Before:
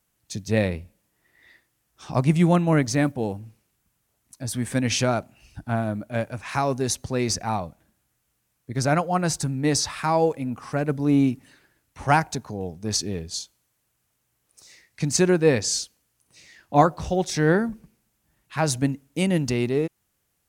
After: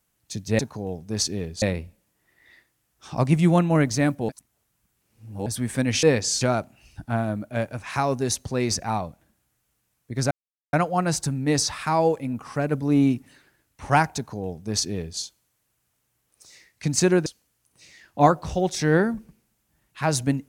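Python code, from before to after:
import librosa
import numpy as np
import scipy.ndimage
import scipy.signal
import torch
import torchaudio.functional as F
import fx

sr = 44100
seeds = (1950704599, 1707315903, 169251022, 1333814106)

y = fx.edit(x, sr, fx.reverse_span(start_s=3.26, length_s=1.17),
    fx.insert_silence(at_s=8.9, length_s=0.42),
    fx.duplicate(start_s=12.33, length_s=1.03, to_s=0.59),
    fx.move(start_s=15.43, length_s=0.38, to_s=5.0), tone=tone)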